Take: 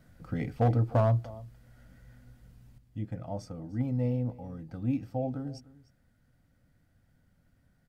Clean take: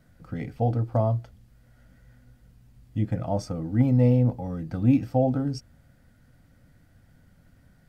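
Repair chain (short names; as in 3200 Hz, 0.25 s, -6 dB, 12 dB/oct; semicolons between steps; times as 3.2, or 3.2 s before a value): clip repair -18.5 dBFS; inverse comb 0.301 s -20 dB; gain correction +10 dB, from 2.78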